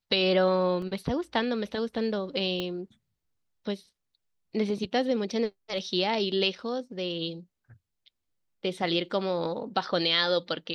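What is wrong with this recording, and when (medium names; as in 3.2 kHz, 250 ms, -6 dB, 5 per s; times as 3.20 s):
0.82 s: dropout 3 ms
2.60 s: pop -18 dBFS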